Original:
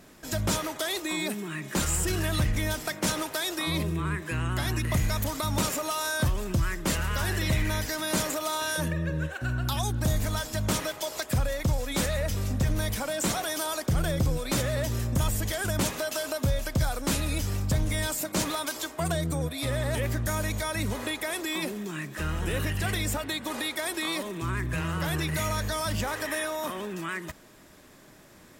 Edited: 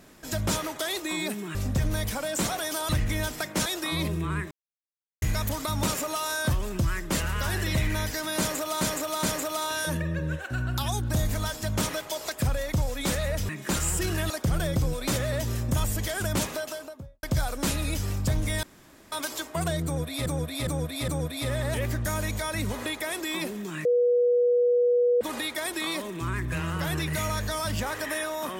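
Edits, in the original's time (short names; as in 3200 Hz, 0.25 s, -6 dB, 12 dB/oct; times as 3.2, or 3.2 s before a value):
1.55–2.36 swap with 12.4–13.74
3.13–3.41 cut
4.26–4.97 mute
8.14–8.56 loop, 3 plays
15.87–16.67 studio fade out
18.07–18.56 room tone
19.29–19.7 loop, 4 plays
22.06–23.42 bleep 486 Hz -18.5 dBFS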